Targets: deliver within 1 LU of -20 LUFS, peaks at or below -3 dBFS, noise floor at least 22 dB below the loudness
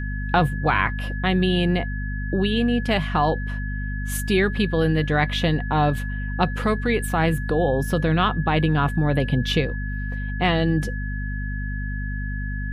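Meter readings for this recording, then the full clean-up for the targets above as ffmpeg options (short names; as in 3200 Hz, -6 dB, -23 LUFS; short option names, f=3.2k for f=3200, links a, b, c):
hum 50 Hz; harmonics up to 250 Hz; hum level -25 dBFS; steady tone 1700 Hz; tone level -34 dBFS; loudness -23.0 LUFS; peak -3.5 dBFS; loudness target -20.0 LUFS
-> -af "bandreject=f=50:t=h:w=6,bandreject=f=100:t=h:w=6,bandreject=f=150:t=h:w=6,bandreject=f=200:t=h:w=6,bandreject=f=250:t=h:w=6"
-af "bandreject=f=1.7k:w=30"
-af "volume=3dB,alimiter=limit=-3dB:level=0:latency=1"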